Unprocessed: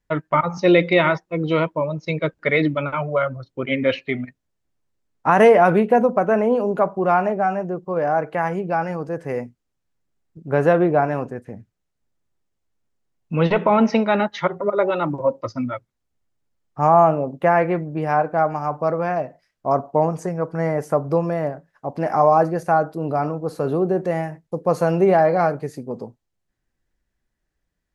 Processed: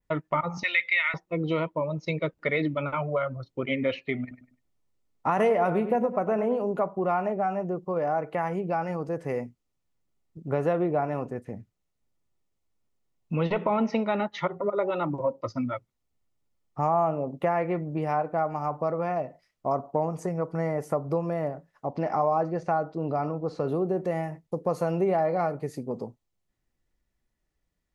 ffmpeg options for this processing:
-filter_complex "[0:a]asettb=1/sr,asplit=3[a][b][c];[a]atrim=end=0.634[d];[b]atrim=start=0.63:end=1.14,asetpts=PTS-STARTPTS,afade=t=in:d=0.004:c=qsin,afade=t=out:st=0.506:d=0.004:c=qsin,highpass=f=2k:t=q:w=3.3[e];[c]atrim=start=1.136[f];[d][e]acrossfade=d=0.004:c1=hsin:c2=qsin[g];[g][f]acrossfade=d=0.004:c1=qsin:c2=hsin,asettb=1/sr,asplit=3[h][i][j];[h]atrim=end=4.214[k];[i]atrim=start=4.21:end=6.62,asetpts=PTS-STARTPTS,afade=t=in:d=0.004:c=qsin,afade=t=out:st=2.406:d=0.004:c=qsin,asplit=2[l][m];[m]adelay=100,lowpass=f=3.6k:p=1,volume=-12.5dB,asplit=2[n][o];[o]adelay=100,lowpass=f=3.6k:p=1,volume=0.31,asplit=2[p][q];[q]adelay=100,lowpass=f=3.6k:p=1,volume=0.31[r];[l][n][p][r]amix=inputs=4:normalize=0,atrim=end_sample=106281[s];[j]atrim=start=6.616[t];[k][s]acrossfade=d=0.004:c1=hsin:c2=qsin[u];[u][t]acrossfade=d=0.004:c1=qsin:c2=hsin,asettb=1/sr,asplit=3[v][w][x];[v]atrim=end=21.864[y];[w]atrim=start=21.86:end=23.68,asetpts=PTS-STARTPTS,afade=t=in:d=0.004:c=qsin,afade=t=out:st=1.816:d=0.004:c=qsin,lowpass=f=6k:w=0.5412,lowpass=f=6k:w=1.3066[z];[x]atrim=start=23.676[aa];[y][z]acrossfade=d=0.004:c1=hsin:c2=qsin[ab];[ab][aa]acrossfade=d=0.004:c1=qsin:c2=hsin,bandreject=f=1.6k:w=6.9,adynamicequalizer=threshold=0.00562:dfrequency=5500:dqfactor=1:tfrequency=5500:tqfactor=1:attack=5:release=100:ratio=0.375:range=2:mode=cutabove:tftype=bell,acompressor=threshold=-25dB:ratio=2,volume=-2dB"

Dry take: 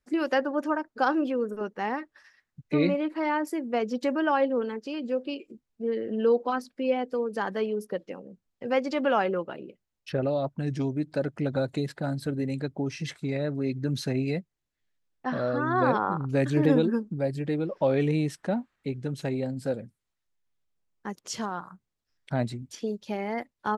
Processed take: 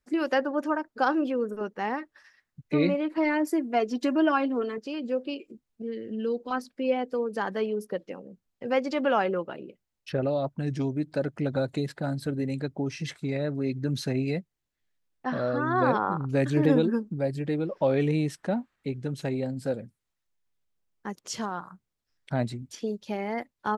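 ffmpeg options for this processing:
-filter_complex "[0:a]asettb=1/sr,asplit=3[a][b][c];[a]atrim=end=3.174[d];[b]atrim=start=3.17:end=4.78,asetpts=PTS-STARTPTS,afade=t=in:d=0.004:c=qsin,afade=t=out:st=1.606:d=0.004:c=qsin,aecho=1:1:2.9:0.82,atrim=end_sample=71001[e];[c]atrim=start=4.776[f];[d][e]acrossfade=d=0.004:c1=hsin:c2=qsin[g];[g][f]acrossfade=d=0.004:c1=qsin:c2=hsin,asettb=1/sr,asplit=3[h][i][j];[h]atrim=end=5.824[k];[i]atrim=start=5.82:end=6.51,asetpts=PTS-STARTPTS,afade=t=in:d=0.004:c=qsin,afade=t=out:st=0.686:d=0.004:c=qsin,equalizer=f=860:w=0.72:g=-14[l];[j]atrim=start=6.506[m];[k][l]acrossfade=d=0.004:c1=hsin:c2=qsin[n];[n][m]acrossfade=d=0.004:c1=qsin:c2=hsin"

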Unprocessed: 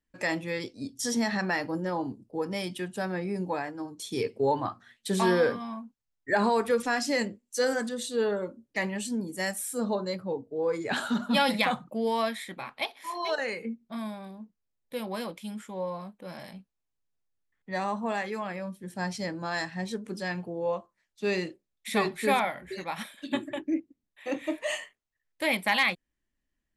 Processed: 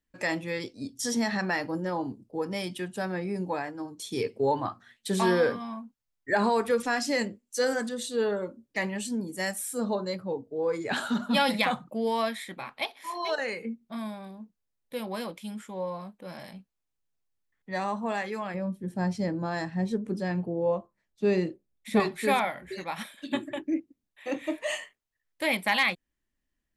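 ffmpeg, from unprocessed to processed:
-filter_complex "[0:a]asettb=1/sr,asplit=3[a][b][c];[a]atrim=end=18.544[d];[b]atrim=start=18.54:end=22,asetpts=PTS-STARTPTS,afade=t=in:d=0.004:c=qsin,afade=t=out:st=3.456:d=0.004:c=qsin,tiltshelf=f=850:g=7[e];[c]atrim=start=21.996[f];[d][e]acrossfade=d=0.004:c1=hsin:c2=qsin[g];[g][f]acrossfade=d=0.004:c1=qsin:c2=hsin"

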